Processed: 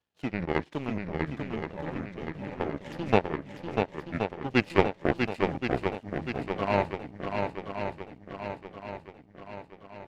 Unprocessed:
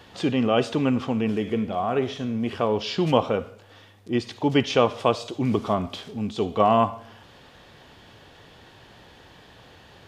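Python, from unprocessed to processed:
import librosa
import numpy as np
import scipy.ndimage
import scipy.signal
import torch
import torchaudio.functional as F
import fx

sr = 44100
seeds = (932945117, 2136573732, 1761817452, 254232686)

y = fx.pitch_ramps(x, sr, semitones=-9.0, every_ms=731)
y = fx.power_curve(y, sr, exponent=2.0)
y = fx.echo_swing(y, sr, ms=1074, ratio=1.5, feedback_pct=50, wet_db=-5.0)
y = y * librosa.db_to_amplitude(3.5)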